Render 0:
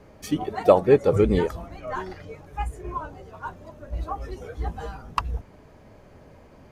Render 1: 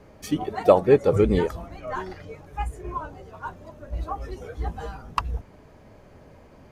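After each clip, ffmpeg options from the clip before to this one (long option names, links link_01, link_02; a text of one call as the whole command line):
ffmpeg -i in.wav -af anull out.wav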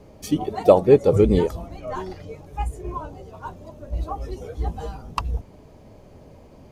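ffmpeg -i in.wav -af "equalizer=frequency=1600:width=1.2:gain=-9.5,volume=3.5dB" out.wav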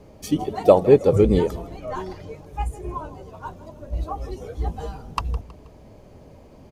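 ffmpeg -i in.wav -af "aecho=1:1:160|320|480:0.119|0.0511|0.022" out.wav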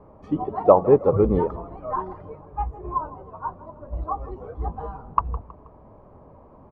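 ffmpeg -i in.wav -af "lowpass=frequency=1100:width_type=q:width=3.5,volume=-3.5dB" out.wav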